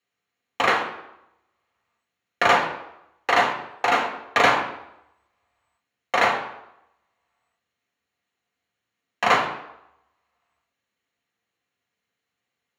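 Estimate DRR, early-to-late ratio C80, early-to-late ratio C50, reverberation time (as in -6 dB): 0.0 dB, 10.5 dB, 7.5 dB, 0.85 s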